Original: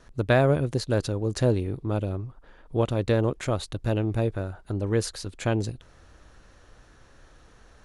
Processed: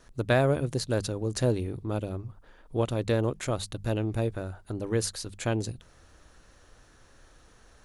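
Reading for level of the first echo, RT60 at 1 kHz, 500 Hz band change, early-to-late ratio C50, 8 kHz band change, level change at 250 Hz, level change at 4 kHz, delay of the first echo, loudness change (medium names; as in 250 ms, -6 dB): no echo, no reverb, -3.0 dB, no reverb, +2.5 dB, -3.0 dB, -0.5 dB, no echo, -3.0 dB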